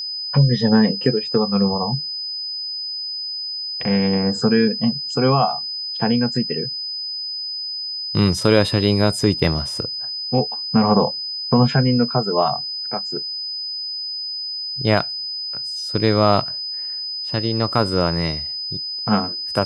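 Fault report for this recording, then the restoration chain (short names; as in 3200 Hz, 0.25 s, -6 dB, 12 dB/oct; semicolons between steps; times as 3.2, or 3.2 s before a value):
tone 5000 Hz -25 dBFS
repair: notch 5000 Hz, Q 30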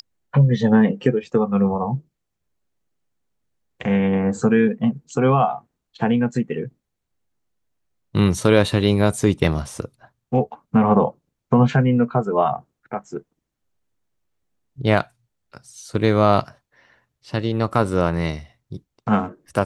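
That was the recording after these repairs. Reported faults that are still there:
none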